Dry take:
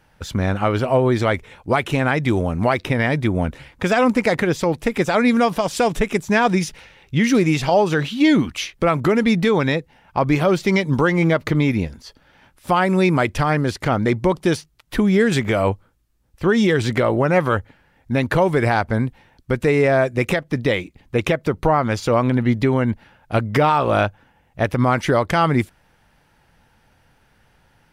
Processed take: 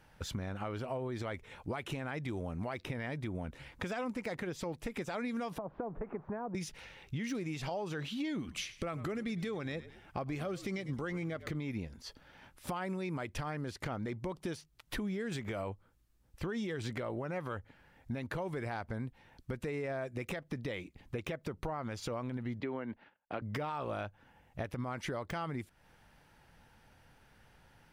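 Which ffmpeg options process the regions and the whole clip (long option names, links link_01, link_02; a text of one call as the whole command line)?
ffmpeg -i in.wav -filter_complex "[0:a]asettb=1/sr,asplit=3[link_01][link_02][link_03];[link_01]atrim=end=5.584[link_04];[link_02]atrim=start=5.58:end=6.55,asetpts=PTS-STARTPTS,afade=type=in:duration=0.004:curve=qsin,afade=type=out:start_time=0.966:duration=0.004:curve=qsin,aeval=exprs='val(0)+0.5*0.0376*sgn(val(0))':channel_layout=same,lowpass=frequency=1200:width=0.5412,lowpass=frequency=1200:width=1.3066,acrossover=split=310|720[link_05][link_06][link_07];[link_05]acompressor=threshold=-33dB:ratio=4[link_08];[link_06]acompressor=threshold=-28dB:ratio=4[link_09];[link_07]acompressor=threshold=-34dB:ratio=4[link_10];[link_08][link_09][link_10]amix=inputs=3:normalize=0[link_11];[link_03]atrim=start=6.546[link_12];[link_04][link_11]acrossfade=duration=0.004:curve1=hsin:curve2=qsin[link_13];[link_13][link_12]acrossfade=duration=0.004:curve1=qsin:curve2=hsin,asettb=1/sr,asplit=3[link_14][link_15][link_16];[link_14]atrim=end=8.384[link_17];[link_15]atrim=start=8.38:end=11.55,asetpts=PTS-STARTPTS,afade=type=in:duration=0.004:curve=qsin,afade=type=out:start_time=3.166:duration=0.004:curve=qsin,equalizer=frequency=8300:width=1.9:gain=4,bandreject=frequency=940:width=5.4,asplit=4[link_18][link_19][link_20][link_21];[link_19]adelay=103,afreqshift=-59,volume=-20dB[link_22];[link_20]adelay=206,afreqshift=-118,volume=-29.4dB[link_23];[link_21]adelay=309,afreqshift=-177,volume=-38.7dB[link_24];[link_18][link_22][link_23][link_24]amix=inputs=4:normalize=0,atrim=end_sample=139797[link_25];[link_16]atrim=start=11.546[link_26];[link_17][link_25]acrossfade=duration=0.004:curve1=hsin:curve2=qsin[link_27];[link_27][link_26]acrossfade=duration=0.004:curve1=qsin:curve2=hsin,asettb=1/sr,asplit=3[link_28][link_29][link_30];[link_28]atrim=end=22.604[link_31];[link_29]atrim=start=22.6:end=23.42,asetpts=PTS-STARTPTS,afade=type=in:duration=0.004:curve=qsin,afade=type=out:start_time=0.816:duration=0.004:curve=qsin,agate=range=-27dB:threshold=-50dB:ratio=16:release=100:detection=peak,acrossover=split=210 3800:gain=0.158 1 0.0794[link_32][link_33][link_34];[link_32][link_33][link_34]amix=inputs=3:normalize=0[link_35];[link_30]atrim=start=23.416[link_36];[link_31][link_35]acrossfade=duration=0.004:curve1=hsin:curve2=qsin[link_37];[link_37][link_36]acrossfade=duration=0.004:curve1=qsin:curve2=hsin,deesser=0.45,alimiter=limit=-12dB:level=0:latency=1:release=114,acompressor=threshold=-34dB:ratio=3,volume=-5dB" out.wav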